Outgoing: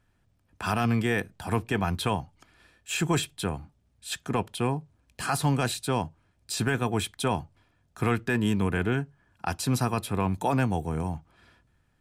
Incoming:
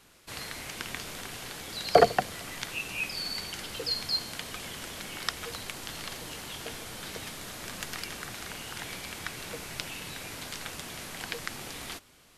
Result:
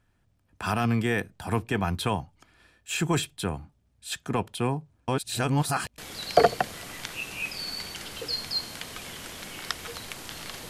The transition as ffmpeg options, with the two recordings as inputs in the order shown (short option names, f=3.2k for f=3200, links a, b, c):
-filter_complex "[0:a]apad=whole_dur=10.69,atrim=end=10.69,asplit=2[a][b];[a]atrim=end=5.082[c];[b]atrim=start=5.078:end=5.982,asetpts=PTS-STARTPTS,areverse[d];[1:a]atrim=start=1.558:end=6.27[e];[c][d]acrossfade=d=0.004:c1=hsin:c2=hsin[f];[f][e]acrossfade=d=0.004:c1=hsin:c2=hsin"